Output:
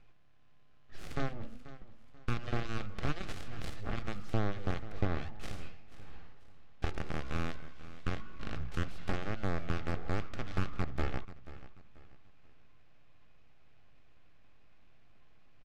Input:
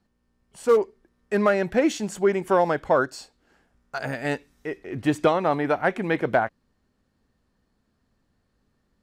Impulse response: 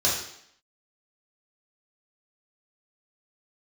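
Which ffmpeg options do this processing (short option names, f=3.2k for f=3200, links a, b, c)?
-filter_complex "[0:a]asetrate=25442,aresample=44100,highpass=f=690:p=1,equalizer=f=2.4k:w=0.35:g=12,asplit=2[a][b];[b]alimiter=limit=-19.5dB:level=0:latency=1:release=321,volume=3dB[c];[a][c]amix=inputs=2:normalize=0,acompressor=threshold=-25dB:ratio=5,aeval=exprs='max(val(0),0)':c=same,aeval=exprs='0.2*(cos(1*acos(clip(val(0)/0.2,-1,1)))-cos(1*PI/2))+0.0398*(cos(8*acos(clip(val(0)/0.2,-1,1)))-cos(8*PI/2))':c=same,asoftclip=type=tanh:threshold=-20.5dB,asuperstop=centerf=960:order=4:qfactor=5.6,aemphasis=mode=reproduction:type=riaa,aecho=1:1:486|972|1458:0.158|0.0539|0.0183,volume=-1dB"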